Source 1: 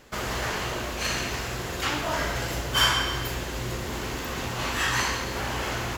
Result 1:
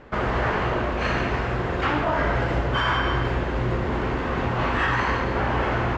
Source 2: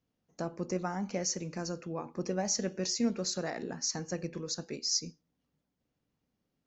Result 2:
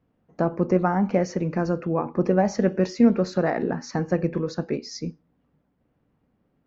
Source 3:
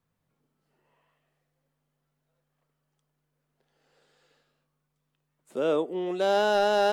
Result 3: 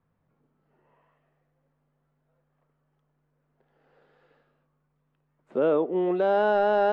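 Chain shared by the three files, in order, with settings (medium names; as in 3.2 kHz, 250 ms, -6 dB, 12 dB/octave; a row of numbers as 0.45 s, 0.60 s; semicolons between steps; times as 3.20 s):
low-pass 1.7 kHz 12 dB/octave; peak limiter -21 dBFS; normalise loudness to -24 LUFS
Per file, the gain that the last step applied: +8.0 dB, +13.5 dB, +5.5 dB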